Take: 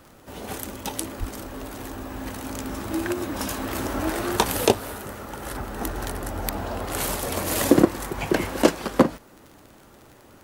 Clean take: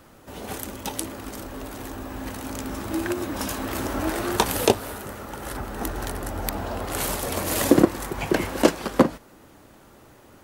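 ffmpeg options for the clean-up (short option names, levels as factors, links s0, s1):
-filter_complex "[0:a]adeclick=t=4,asplit=3[s0][s1][s2];[s0]afade=t=out:st=1.19:d=0.02[s3];[s1]highpass=f=140:w=0.5412,highpass=f=140:w=1.3066,afade=t=in:st=1.19:d=0.02,afade=t=out:st=1.31:d=0.02[s4];[s2]afade=t=in:st=1.31:d=0.02[s5];[s3][s4][s5]amix=inputs=3:normalize=0"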